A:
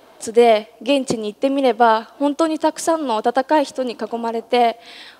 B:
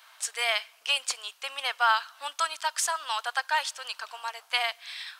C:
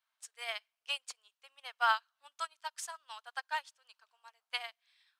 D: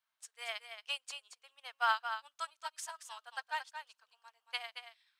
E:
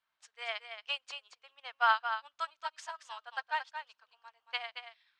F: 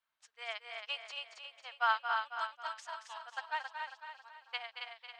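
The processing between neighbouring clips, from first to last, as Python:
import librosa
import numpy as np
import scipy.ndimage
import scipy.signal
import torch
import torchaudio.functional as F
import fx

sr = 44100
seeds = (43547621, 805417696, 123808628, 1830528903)

y1 = scipy.signal.sosfilt(scipy.signal.butter(4, 1200.0, 'highpass', fs=sr, output='sos'), x)
y2 = fx.upward_expand(y1, sr, threshold_db=-38.0, expansion=2.5)
y2 = y2 * 10.0 ** (-4.5 / 20.0)
y3 = y2 + 10.0 ** (-8.5 / 20.0) * np.pad(y2, (int(226 * sr / 1000.0), 0))[:len(y2)]
y3 = y3 * 10.0 ** (-2.0 / 20.0)
y4 = fx.air_absorb(y3, sr, metres=150.0)
y4 = y4 * 10.0 ** (5.0 / 20.0)
y5 = fx.echo_feedback(y4, sr, ms=272, feedback_pct=44, wet_db=-5)
y5 = y5 * 10.0 ** (-3.5 / 20.0)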